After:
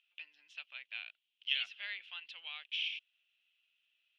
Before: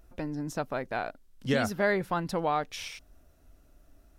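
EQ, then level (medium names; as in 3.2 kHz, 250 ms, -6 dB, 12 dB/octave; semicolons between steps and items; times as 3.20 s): Butterworth band-pass 2.9 kHz, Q 3.6; +8.5 dB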